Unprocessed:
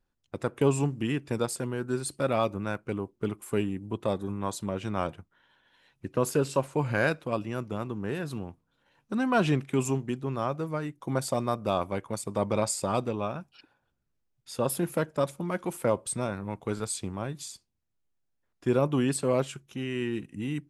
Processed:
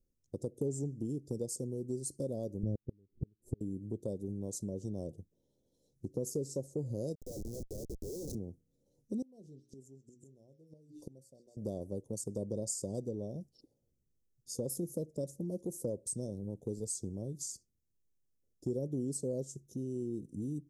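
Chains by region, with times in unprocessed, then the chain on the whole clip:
2.63–3.61 tilt -4.5 dB/oct + flipped gate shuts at -15 dBFS, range -39 dB
7.15–8.35 HPF 530 Hz + Schmitt trigger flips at -43 dBFS
9.22–11.57 notches 60/120/180/240/300/360/420/480/540 Hz + delay with a stepping band-pass 0.131 s, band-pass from 3200 Hz, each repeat 0.7 oct, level -1 dB + flipped gate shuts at -27 dBFS, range -27 dB
whole clip: elliptic band-stop 500–5700 Hz, stop band 60 dB; dynamic EQ 6400 Hz, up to +5 dB, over -55 dBFS, Q 1.9; compressor 2.5:1, threshold -37 dBFS

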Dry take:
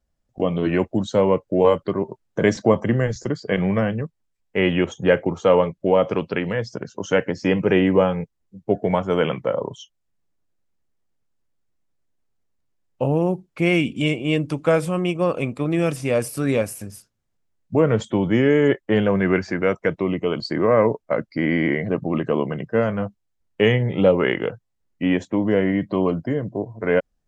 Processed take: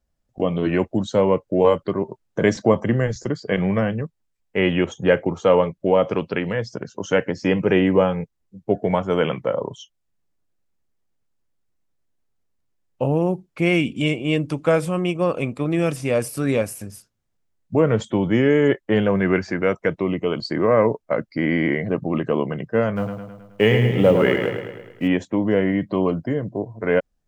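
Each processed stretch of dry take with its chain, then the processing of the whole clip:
22.96–25.08 G.711 law mismatch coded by mu + feedback echo 0.106 s, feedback 56%, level -6.5 dB
whole clip: dry

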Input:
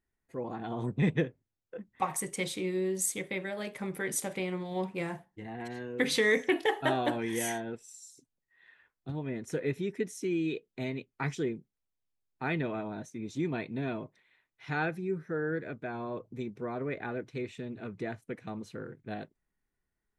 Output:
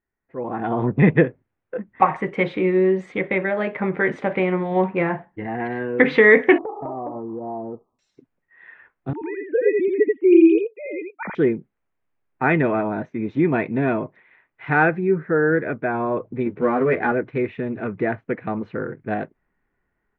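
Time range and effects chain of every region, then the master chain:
6.58–7.99 brick-wall FIR low-pass 1300 Hz + compressor 8:1, threshold -41 dBFS
9.13–11.35 sine-wave speech + echo 85 ms -3 dB
16.45–17.12 switching dead time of 0.065 ms + high shelf 11000 Hz -4.5 dB + doubler 12 ms -2 dB
whole clip: LPF 2200 Hz 24 dB/oct; low shelf 190 Hz -6.5 dB; AGC gain up to 12.5 dB; gain +3 dB

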